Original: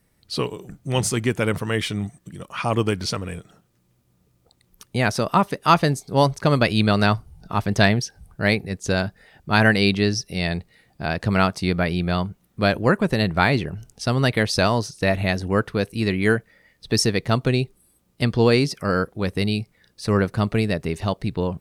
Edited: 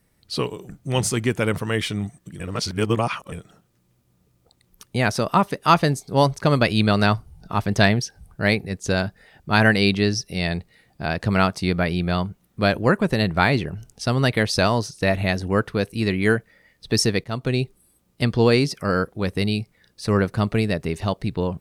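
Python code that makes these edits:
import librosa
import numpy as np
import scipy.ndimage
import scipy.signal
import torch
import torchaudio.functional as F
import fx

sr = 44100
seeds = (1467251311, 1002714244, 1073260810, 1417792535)

y = fx.edit(x, sr, fx.reverse_span(start_s=2.4, length_s=0.92),
    fx.fade_in_from(start_s=17.24, length_s=0.39, floor_db=-13.0), tone=tone)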